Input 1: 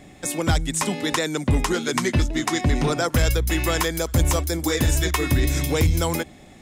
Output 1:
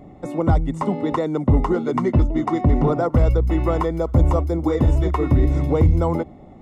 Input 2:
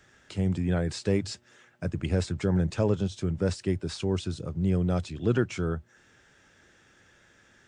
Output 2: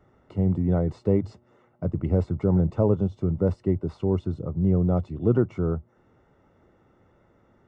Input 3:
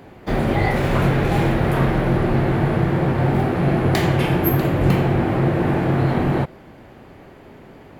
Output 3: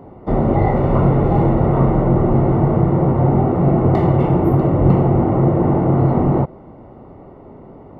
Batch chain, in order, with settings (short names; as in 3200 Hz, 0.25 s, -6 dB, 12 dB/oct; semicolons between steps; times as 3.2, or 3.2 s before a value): polynomial smoothing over 65 samples; gain +4 dB